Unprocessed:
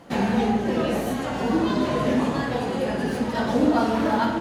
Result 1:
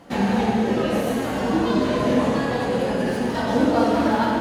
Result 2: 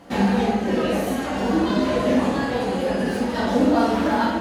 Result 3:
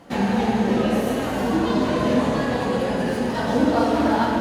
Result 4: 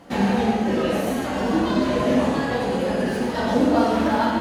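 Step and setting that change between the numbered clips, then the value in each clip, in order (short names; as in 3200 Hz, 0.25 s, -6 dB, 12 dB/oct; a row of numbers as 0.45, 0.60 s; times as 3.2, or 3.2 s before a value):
non-linear reverb, gate: 290, 90, 460, 170 ms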